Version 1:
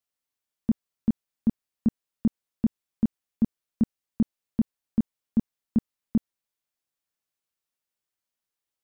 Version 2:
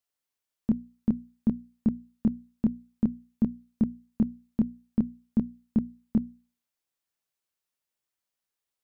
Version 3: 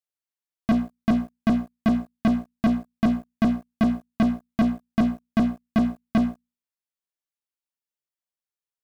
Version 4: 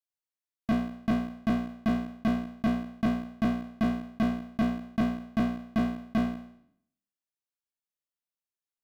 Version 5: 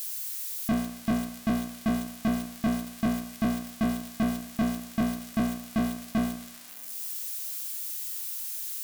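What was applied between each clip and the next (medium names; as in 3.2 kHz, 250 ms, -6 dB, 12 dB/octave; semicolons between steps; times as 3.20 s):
hum notches 60/120/180/240/300 Hz
waveshaping leveller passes 5
spectral sustain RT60 0.66 s; trim -7 dB
zero-crossing glitches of -28 dBFS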